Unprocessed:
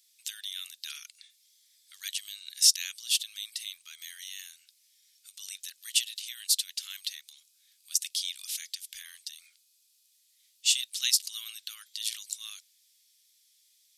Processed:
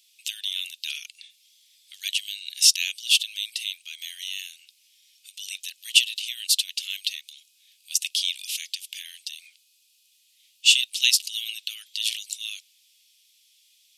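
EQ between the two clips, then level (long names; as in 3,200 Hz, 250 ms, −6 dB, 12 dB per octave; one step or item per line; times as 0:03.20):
high-pass with resonance 2,700 Hz, resonance Q 3.9
+2.0 dB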